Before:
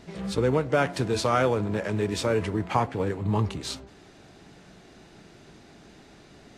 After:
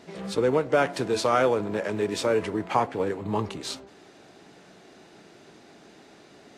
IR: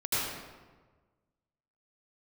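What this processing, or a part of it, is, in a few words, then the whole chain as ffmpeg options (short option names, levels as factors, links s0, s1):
filter by subtraction: -filter_complex "[0:a]asplit=2[s0][s1];[s1]lowpass=420,volume=-1[s2];[s0][s2]amix=inputs=2:normalize=0"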